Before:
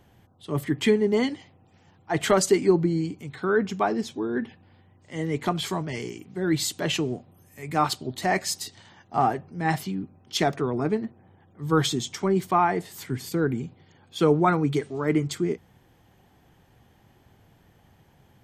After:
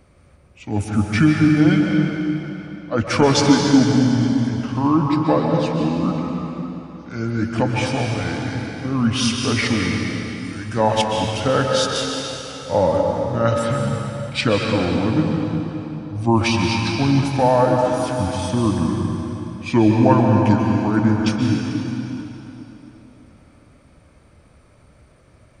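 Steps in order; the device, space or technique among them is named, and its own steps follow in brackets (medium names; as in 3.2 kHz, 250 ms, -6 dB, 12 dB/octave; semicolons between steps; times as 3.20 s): slowed and reverbed (tape speed -28%; reverberation RT60 3.4 s, pre-delay 119 ms, DRR 0 dB); trim +4.5 dB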